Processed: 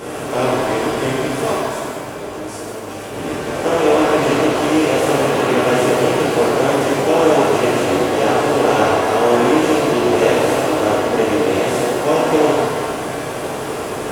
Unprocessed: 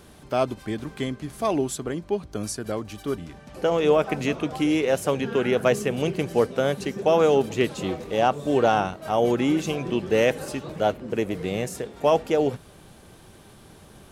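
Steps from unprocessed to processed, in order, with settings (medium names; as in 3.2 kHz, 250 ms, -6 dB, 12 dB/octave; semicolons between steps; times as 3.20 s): spectral levelling over time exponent 0.4; 1.52–3.14 s: level held to a coarse grid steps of 15 dB; pitch-shifted reverb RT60 1.6 s, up +7 st, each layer -8 dB, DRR -9.5 dB; trim -8.5 dB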